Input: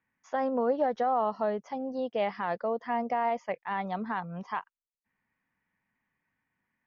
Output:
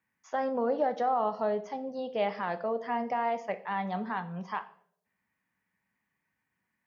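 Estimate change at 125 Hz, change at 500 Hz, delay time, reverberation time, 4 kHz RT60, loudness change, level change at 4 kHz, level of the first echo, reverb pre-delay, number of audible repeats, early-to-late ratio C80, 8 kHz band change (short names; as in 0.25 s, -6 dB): +1.0 dB, -1.0 dB, none, 0.65 s, 0.50 s, -1.0 dB, +1.0 dB, none, 5 ms, none, 18.5 dB, n/a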